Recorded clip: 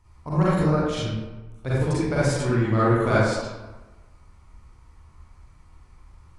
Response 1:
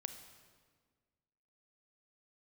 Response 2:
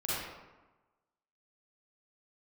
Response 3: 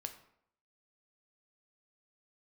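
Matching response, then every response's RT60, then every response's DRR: 2; 1.6 s, 1.1 s, 0.70 s; 8.0 dB, -10.0 dB, 6.0 dB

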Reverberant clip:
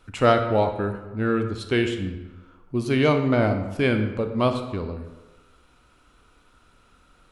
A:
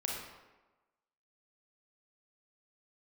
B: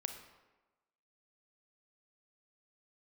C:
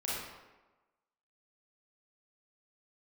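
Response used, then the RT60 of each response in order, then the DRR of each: B; 1.2 s, 1.2 s, 1.2 s; -2.0 dB, 6.0 dB, -8.0 dB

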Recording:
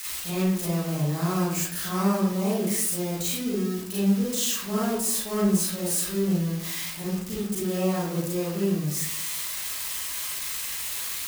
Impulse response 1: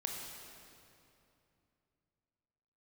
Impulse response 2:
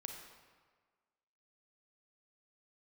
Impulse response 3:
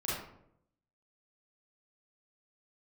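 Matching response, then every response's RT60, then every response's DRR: 3; 2.8 s, 1.5 s, 0.75 s; 0.0 dB, 2.5 dB, -8.5 dB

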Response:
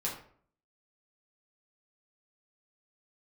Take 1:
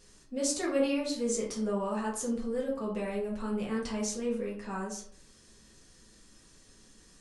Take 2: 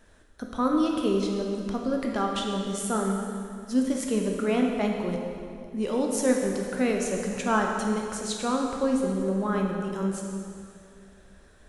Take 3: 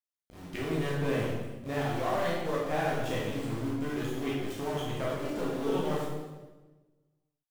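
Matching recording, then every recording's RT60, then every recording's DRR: 1; 0.55 s, 2.4 s, 1.2 s; -5.0 dB, 0.5 dB, -6.0 dB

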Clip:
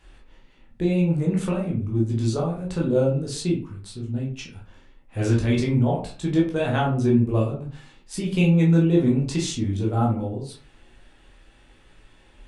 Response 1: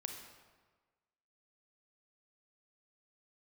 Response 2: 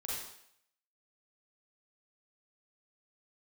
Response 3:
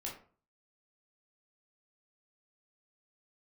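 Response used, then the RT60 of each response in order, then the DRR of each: 3; 1.4 s, 0.70 s, 0.45 s; 3.5 dB, -6.0 dB, -3.0 dB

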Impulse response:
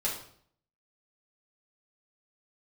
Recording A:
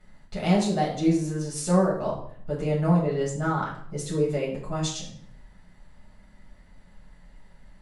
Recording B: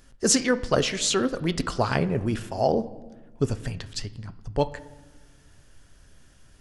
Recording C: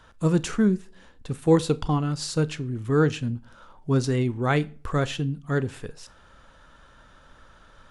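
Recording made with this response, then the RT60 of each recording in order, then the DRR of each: A; 0.60 s, no single decay rate, 0.45 s; -5.5 dB, 12.0 dB, 17.0 dB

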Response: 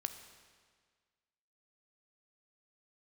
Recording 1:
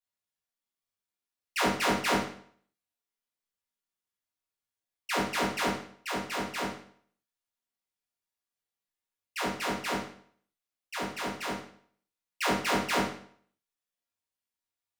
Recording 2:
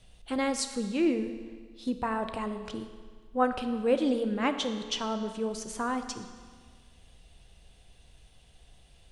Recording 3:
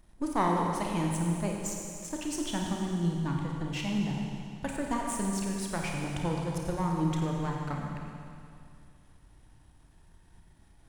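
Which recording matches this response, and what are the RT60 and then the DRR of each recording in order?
2; 0.55 s, 1.7 s, 2.4 s; -7.5 dB, 7.5 dB, -0.5 dB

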